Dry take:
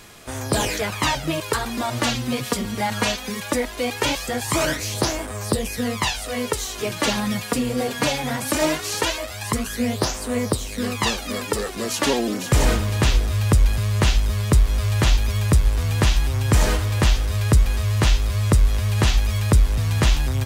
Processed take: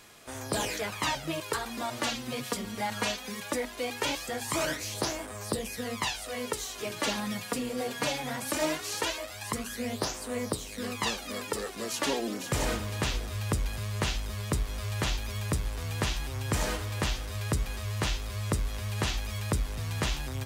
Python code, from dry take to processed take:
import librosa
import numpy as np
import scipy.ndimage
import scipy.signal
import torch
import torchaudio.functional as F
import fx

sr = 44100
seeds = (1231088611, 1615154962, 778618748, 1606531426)

y = fx.low_shelf(x, sr, hz=110.0, db=-8.5)
y = fx.hum_notches(y, sr, base_hz=60, count=7)
y = y * 10.0 ** (-8.0 / 20.0)